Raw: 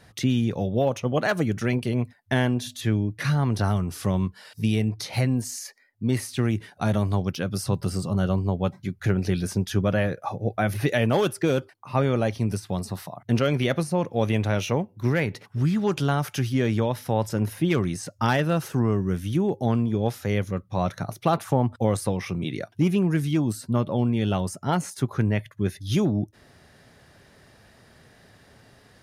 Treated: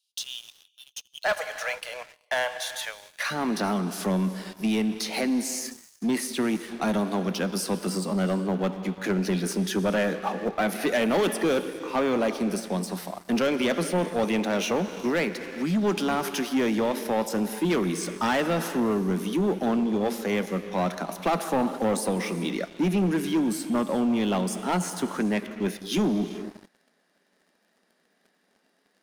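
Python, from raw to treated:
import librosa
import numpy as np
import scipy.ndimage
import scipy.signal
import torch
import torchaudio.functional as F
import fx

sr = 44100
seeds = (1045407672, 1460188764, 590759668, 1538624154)

y = fx.steep_highpass(x, sr, hz=fx.steps((0.0, 2800.0), (1.24, 530.0), (3.3, 180.0)), slope=72)
y = fx.rev_gated(y, sr, seeds[0], gate_ms=450, shape='flat', drr_db=11.0)
y = fx.leveller(y, sr, passes=3)
y = y * 10.0 ** (-8.5 / 20.0)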